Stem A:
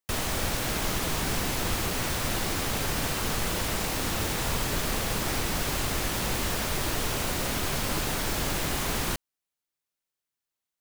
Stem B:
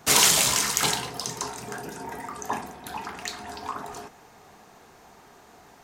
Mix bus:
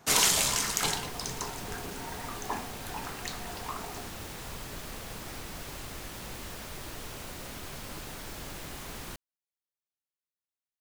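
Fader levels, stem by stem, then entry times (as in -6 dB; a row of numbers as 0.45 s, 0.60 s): -12.5 dB, -5.5 dB; 0.00 s, 0.00 s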